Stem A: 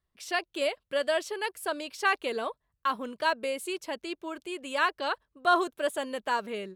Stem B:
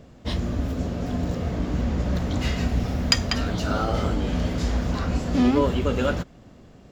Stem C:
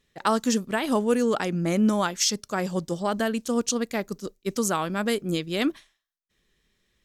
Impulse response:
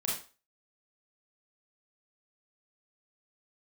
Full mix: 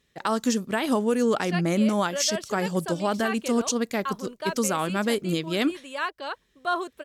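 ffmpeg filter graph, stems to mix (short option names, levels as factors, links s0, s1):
-filter_complex "[0:a]adelay=1200,volume=0.708[s0];[2:a]highpass=41,volume=1.19[s1];[s0][s1]amix=inputs=2:normalize=0,alimiter=limit=0.2:level=0:latency=1:release=110"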